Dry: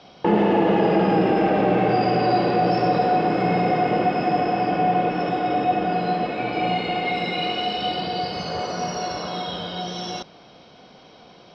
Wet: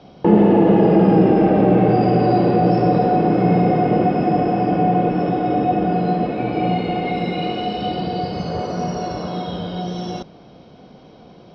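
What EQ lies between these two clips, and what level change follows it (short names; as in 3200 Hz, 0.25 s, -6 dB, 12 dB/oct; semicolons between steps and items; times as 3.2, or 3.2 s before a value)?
tilt shelf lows +7.5 dB, about 650 Hz; +2.0 dB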